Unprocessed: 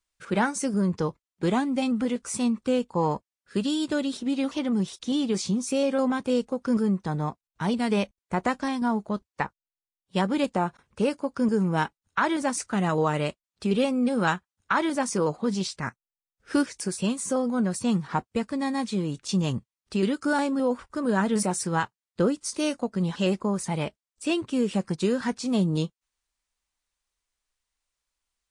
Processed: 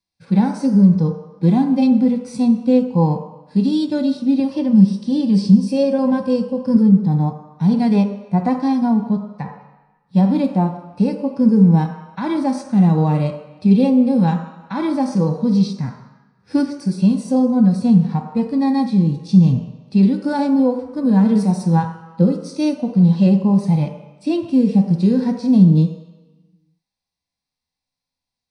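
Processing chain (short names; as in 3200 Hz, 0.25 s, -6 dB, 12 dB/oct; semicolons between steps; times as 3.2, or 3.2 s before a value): reverb RT60 1.0 s, pre-delay 3 ms, DRR 6 dB; harmonic-percussive split percussive -12 dB; 4.39–6.76 ripple EQ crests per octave 1.3, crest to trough 8 dB; gain -2.5 dB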